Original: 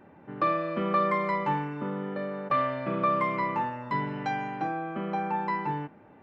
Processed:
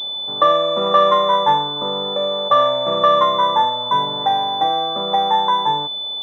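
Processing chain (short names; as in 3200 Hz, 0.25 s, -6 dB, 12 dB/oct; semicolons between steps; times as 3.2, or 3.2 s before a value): band shelf 760 Hz +14.5 dB; pulse-width modulation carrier 3500 Hz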